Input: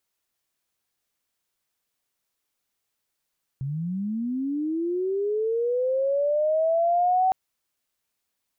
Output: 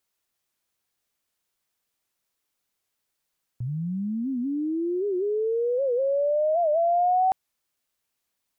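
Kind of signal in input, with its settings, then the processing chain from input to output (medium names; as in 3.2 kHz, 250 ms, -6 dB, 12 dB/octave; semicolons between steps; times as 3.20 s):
sweep linear 130 Hz -> 760 Hz -26.5 dBFS -> -17.5 dBFS 3.71 s
warped record 78 rpm, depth 160 cents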